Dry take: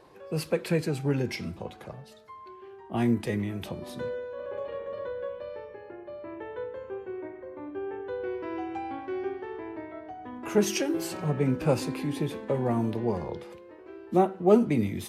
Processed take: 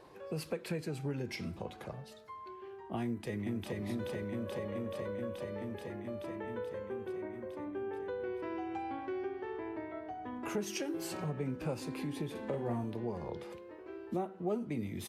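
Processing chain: 3.03–3.81 s: echo throw 430 ms, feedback 75%, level -2.5 dB; compression 3:1, threshold -35 dBFS, peak gain reduction 15.5 dB; 12.31–12.84 s: doubling 42 ms -5 dB; trim -1.5 dB

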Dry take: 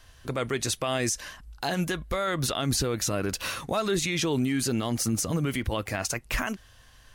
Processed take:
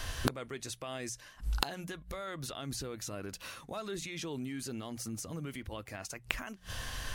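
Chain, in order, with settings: hum notches 60/120/180 Hz; inverted gate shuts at -32 dBFS, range -28 dB; trim +15 dB

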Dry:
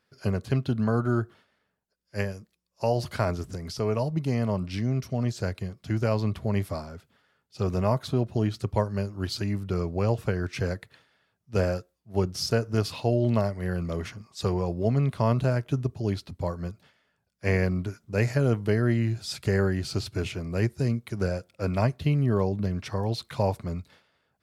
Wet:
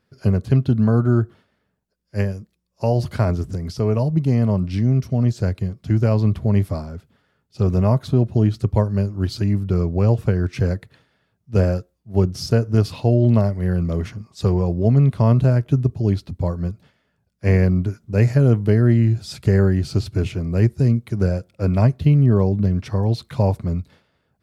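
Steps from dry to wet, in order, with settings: bass shelf 420 Hz +11 dB

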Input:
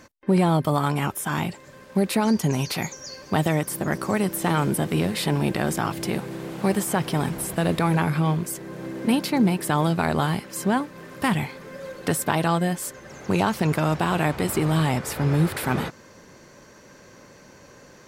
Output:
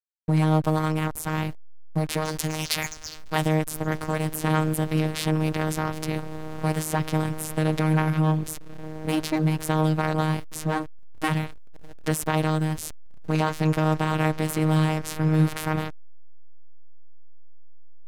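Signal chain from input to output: 2.25–3.42 s: tilt shelf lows -6.5 dB, about 870 Hz; robot voice 156 Hz; hysteresis with a dead band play -25.5 dBFS; trim +1 dB

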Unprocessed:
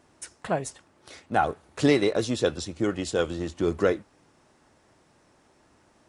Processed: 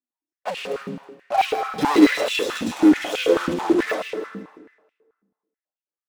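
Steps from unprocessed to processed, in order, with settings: harmonic-percussive separation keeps harmonic; gate -52 dBFS, range -21 dB; comb 4 ms, depth 42%; waveshaping leveller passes 5; in parallel at -1 dB: peak limiter -18.5 dBFS, peak gain reduction 9 dB; on the sum: waveshaping leveller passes 2; feedback echo behind a high-pass 159 ms, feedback 36%, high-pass 1.5 kHz, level -9 dB; on a send at -5 dB: reverberation RT60 1.4 s, pre-delay 60 ms; on the sum: step-sequenced high-pass 9.2 Hz 210–2700 Hz; trim -12 dB

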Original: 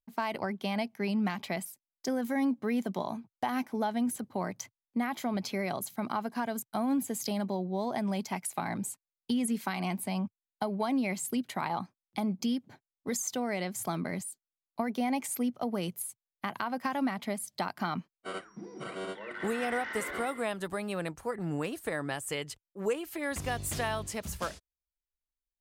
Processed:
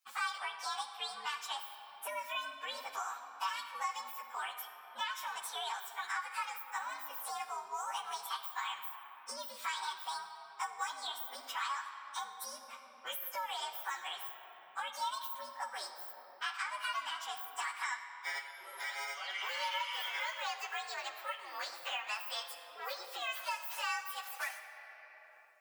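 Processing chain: frequency axis rescaled in octaves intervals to 122%; high-pass 920 Hz 24 dB/octave; simulated room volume 3200 m³, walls mixed, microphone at 1.1 m; three bands compressed up and down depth 70%; trim +2 dB

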